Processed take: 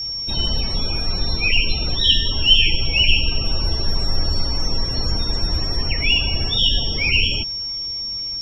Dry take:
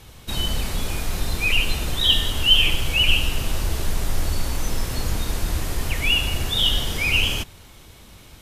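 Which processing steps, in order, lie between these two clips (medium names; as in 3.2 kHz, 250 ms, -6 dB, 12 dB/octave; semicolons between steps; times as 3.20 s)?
whistle 5.5 kHz -26 dBFS; loudest bins only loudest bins 64; trim +2 dB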